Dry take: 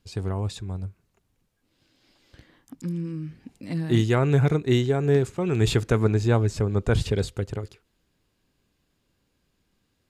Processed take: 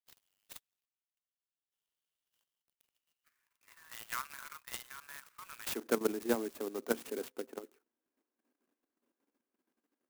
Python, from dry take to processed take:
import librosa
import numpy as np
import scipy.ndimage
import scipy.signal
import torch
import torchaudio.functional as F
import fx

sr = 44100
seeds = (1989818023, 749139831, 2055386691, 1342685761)

y = fx.wiener(x, sr, points=9)
y = fx.cheby1_highpass(y, sr, hz=fx.steps((0.0, 2900.0), (3.24, 1000.0), (5.75, 230.0)), order=6)
y = fx.level_steps(y, sr, step_db=11)
y = fx.clock_jitter(y, sr, seeds[0], jitter_ms=0.066)
y = y * librosa.db_to_amplitude(-4.0)